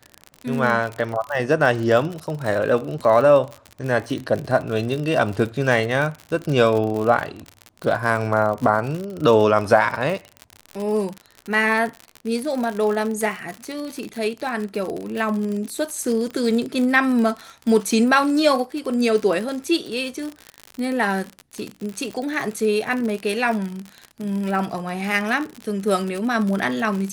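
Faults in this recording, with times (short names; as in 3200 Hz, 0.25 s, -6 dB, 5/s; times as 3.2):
crackle 59/s -25 dBFS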